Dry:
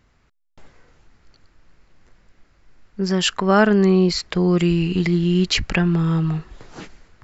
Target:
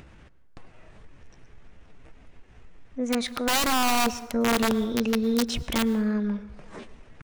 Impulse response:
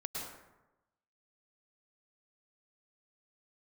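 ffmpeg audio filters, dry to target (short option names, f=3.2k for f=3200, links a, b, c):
-filter_complex "[0:a]highshelf=f=3k:g=-11.5,asetrate=57191,aresample=44100,atempo=0.771105,aeval=exprs='(mod(3.55*val(0)+1,2)-1)/3.55':c=same,acompressor=mode=upward:threshold=-29dB:ratio=2.5,asplit=2[a][b];[1:a]atrim=start_sample=2205[c];[b][c]afir=irnorm=-1:irlink=0,volume=-14.5dB[d];[a][d]amix=inputs=2:normalize=0,volume=-7dB"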